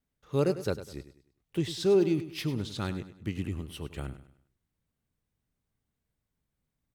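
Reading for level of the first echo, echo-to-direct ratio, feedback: -13.0 dB, -12.5 dB, 36%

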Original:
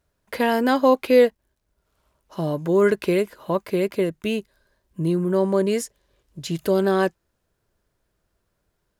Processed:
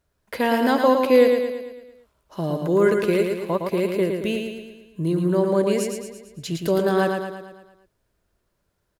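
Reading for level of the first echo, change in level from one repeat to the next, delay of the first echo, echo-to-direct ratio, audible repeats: -5.0 dB, -5.5 dB, 0.112 s, -3.5 dB, 6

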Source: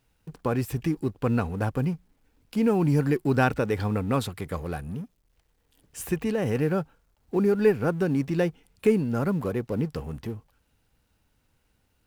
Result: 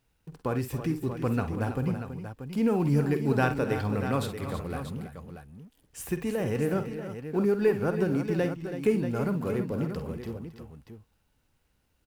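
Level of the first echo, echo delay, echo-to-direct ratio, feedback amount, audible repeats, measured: -11.0 dB, 49 ms, -5.0 dB, no steady repeat, 4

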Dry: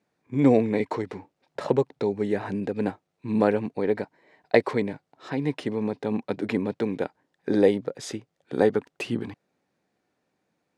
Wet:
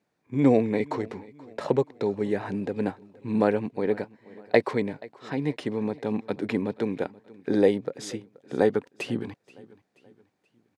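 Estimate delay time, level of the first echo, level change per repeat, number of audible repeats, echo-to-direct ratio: 0.479 s, -22.0 dB, -7.0 dB, 2, -21.0 dB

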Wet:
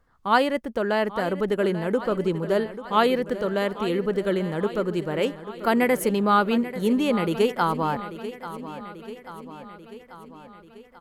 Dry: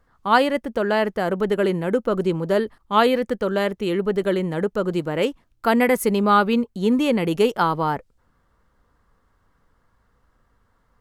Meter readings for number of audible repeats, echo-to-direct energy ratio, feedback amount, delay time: 5, -11.5 dB, 60%, 0.839 s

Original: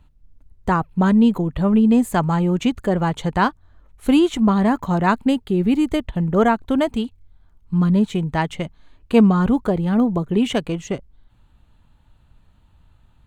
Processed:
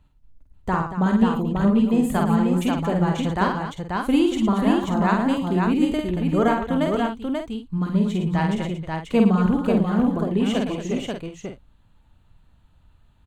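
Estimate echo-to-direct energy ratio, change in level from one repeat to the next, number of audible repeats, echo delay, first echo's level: 0.5 dB, no steady repeat, 5, 49 ms, -3.5 dB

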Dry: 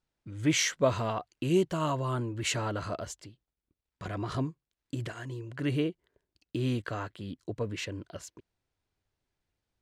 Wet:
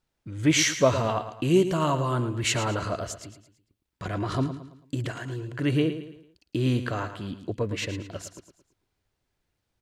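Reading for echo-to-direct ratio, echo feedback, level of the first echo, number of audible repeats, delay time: -10.0 dB, 40%, -11.0 dB, 4, 0.111 s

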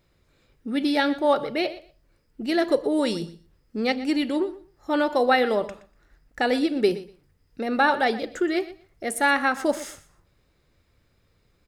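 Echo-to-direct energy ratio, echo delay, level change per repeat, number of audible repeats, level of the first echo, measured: -16.5 dB, 0.121 s, -15.5 dB, 2, -16.5 dB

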